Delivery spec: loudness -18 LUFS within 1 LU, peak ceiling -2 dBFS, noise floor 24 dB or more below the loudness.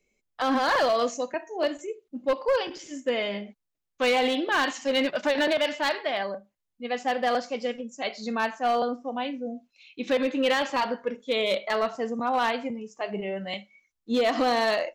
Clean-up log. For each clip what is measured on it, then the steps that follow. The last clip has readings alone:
clipped 1.2%; flat tops at -18.0 dBFS; loudness -27.0 LUFS; peak -18.0 dBFS; loudness target -18.0 LUFS
-> clip repair -18 dBFS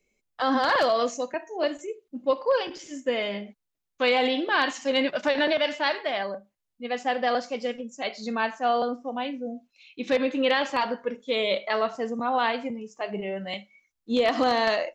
clipped 0.0%; loudness -26.5 LUFS; peak -9.0 dBFS; loudness target -18.0 LUFS
-> gain +8.5 dB; limiter -2 dBFS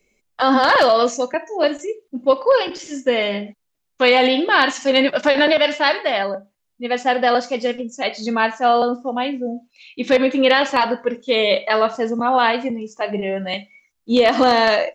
loudness -18.0 LUFS; peak -2.0 dBFS; noise floor -73 dBFS

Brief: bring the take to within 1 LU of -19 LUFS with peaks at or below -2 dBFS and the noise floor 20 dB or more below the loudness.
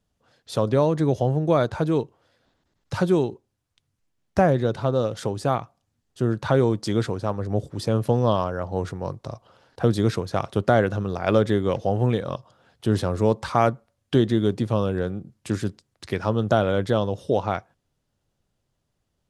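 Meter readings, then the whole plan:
loudness -24.0 LUFS; peak -4.5 dBFS; loudness target -19.0 LUFS
-> gain +5 dB; limiter -2 dBFS

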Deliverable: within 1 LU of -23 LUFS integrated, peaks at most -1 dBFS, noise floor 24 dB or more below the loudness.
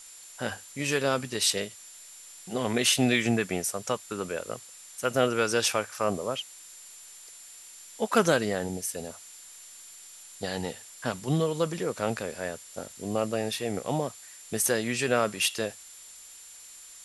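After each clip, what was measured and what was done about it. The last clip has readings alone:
steady tone 7200 Hz; tone level -49 dBFS; noise floor -48 dBFS; noise floor target -53 dBFS; loudness -28.5 LUFS; peak -7.0 dBFS; loudness target -23.0 LUFS
-> notch 7200 Hz, Q 30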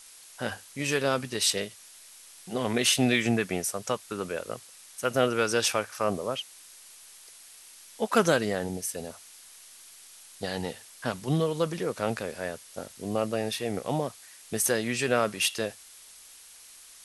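steady tone none; noise floor -51 dBFS; noise floor target -53 dBFS
-> denoiser 6 dB, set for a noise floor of -51 dBFS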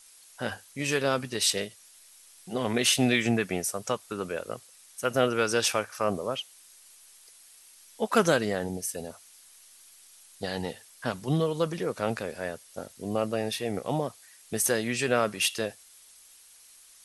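noise floor -55 dBFS; loudness -28.5 LUFS; peak -7.0 dBFS; loudness target -23.0 LUFS
-> gain +5.5 dB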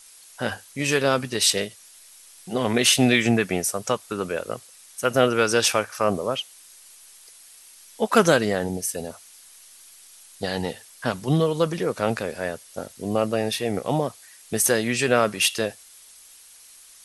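loudness -23.0 LUFS; peak -1.5 dBFS; noise floor -49 dBFS

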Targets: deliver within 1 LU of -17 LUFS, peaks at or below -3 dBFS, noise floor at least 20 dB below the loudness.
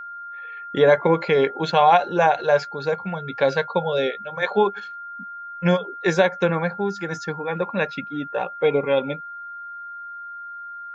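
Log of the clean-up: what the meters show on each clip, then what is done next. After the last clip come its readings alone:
steady tone 1400 Hz; tone level -33 dBFS; loudness -21.5 LUFS; peak -5.0 dBFS; loudness target -17.0 LUFS
-> notch 1400 Hz, Q 30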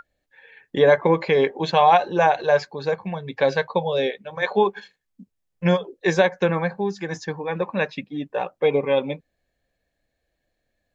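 steady tone none; loudness -22.0 LUFS; peak -4.5 dBFS; loudness target -17.0 LUFS
-> gain +5 dB; limiter -3 dBFS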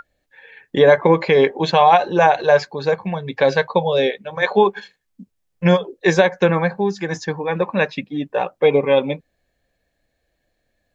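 loudness -17.5 LUFS; peak -3.0 dBFS; noise floor -72 dBFS

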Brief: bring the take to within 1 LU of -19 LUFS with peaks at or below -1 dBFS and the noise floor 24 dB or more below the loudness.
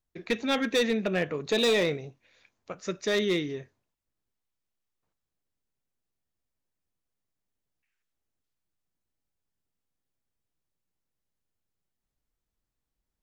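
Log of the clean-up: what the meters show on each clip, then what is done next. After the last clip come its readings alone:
clipped 0.5%; flat tops at -19.5 dBFS; loudness -27.5 LUFS; peak -19.5 dBFS; loudness target -19.0 LUFS
-> clip repair -19.5 dBFS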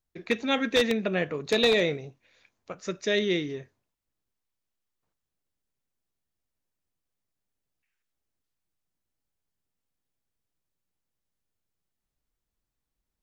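clipped 0.0%; loudness -26.5 LUFS; peak -10.5 dBFS; loudness target -19.0 LUFS
-> gain +7.5 dB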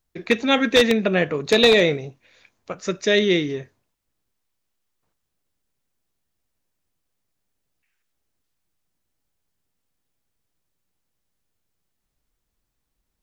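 loudness -19.0 LUFS; peak -3.0 dBFS; noise floor -78 dBFS

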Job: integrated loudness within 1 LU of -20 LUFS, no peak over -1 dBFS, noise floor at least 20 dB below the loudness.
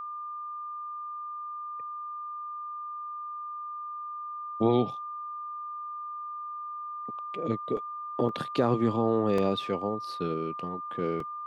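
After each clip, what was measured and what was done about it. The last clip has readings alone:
dropouts 4; longest dropout 3.2 ms; steady tone 1200 Hz; tone level -35 dBFS; loudness -32.0 LUFS; peak -13.0 dBFS; loudness target -20.0 LUFS
-> interpolate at 7.77/8.29/9.38/11.2, 3.2 ms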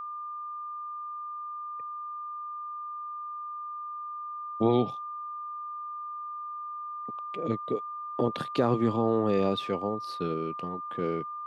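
dropouts 0; steady tone 1200 Hz; tone level -35 dBFS
-> notch 1200 Hz, Q 30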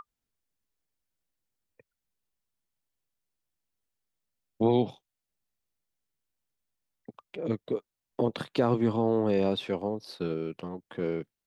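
steady tone none; loudness -29.5 LUFS; peak -13.5 dBFS; loudness target -20.0 LUFS
-> gain +9.5 dB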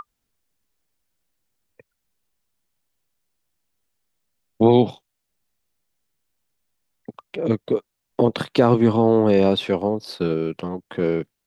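loudness -20.0 LUFS; peak -4.0 dBFS; noise floor -78 dBFS

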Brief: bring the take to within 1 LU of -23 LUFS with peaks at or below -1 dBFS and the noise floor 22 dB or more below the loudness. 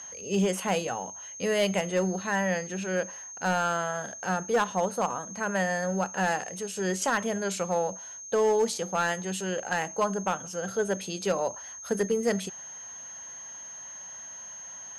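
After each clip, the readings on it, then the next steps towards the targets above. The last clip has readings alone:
clipped 0.4%; flat tops at -18.5 dBFS; steady tone 6400 Hz; tone level -40 dBFS; loudness -29.0 LUFS; peak -18.5 dBFS; loudness target -23.0 LUFS
-> clip repair -18.5 dBFS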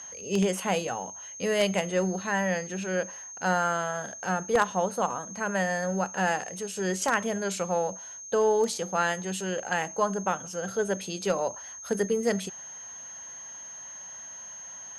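clipped 0.0%; steady tone 6400 Hz; tone level -40 dBFS
-> notch 6400 Hz, Q 30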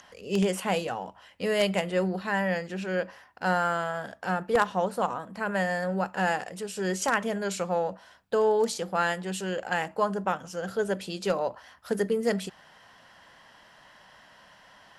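steady tone none; loudness -29.0 LUFS; peak -9.5 dBFS; loudness target -23.0 LUFS
-> gain +6 dB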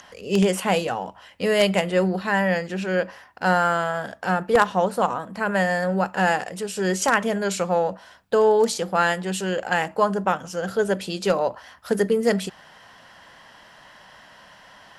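loudness -22.5 LUFS; peak -3.5 dBFS; noise floor -50 dBFS

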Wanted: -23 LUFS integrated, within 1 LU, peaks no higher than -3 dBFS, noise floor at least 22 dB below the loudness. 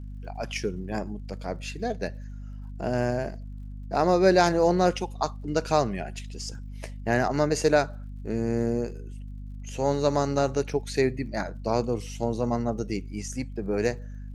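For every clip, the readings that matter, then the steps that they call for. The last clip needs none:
ticks 45/s; hum 50 Hz; harmonics up to 250 Hz; hum level -35 dBFS; loudness -27.0 LUFS; peak -7.0 dBFS; loudness target -23.0 LUFS
-> de-click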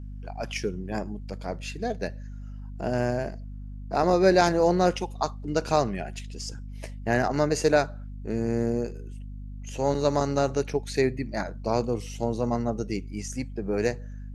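ticks 0/s; hum 50 Hz; harmonics up to 250 Hz; hum level -35 dBFS
-> de-hum 50 Hz, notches 5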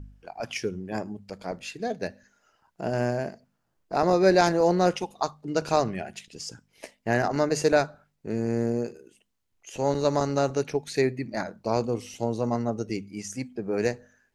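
hum none; loudness -27.0 LUFS; peak -7.5 dBFS; loudness target -23.0 LUFS
-> gain +4 dB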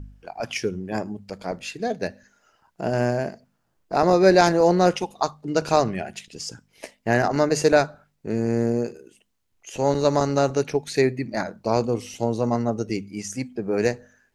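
loudness -23.0 LUFS; peak -3.5 dBFS; noise floor -71 dBFS

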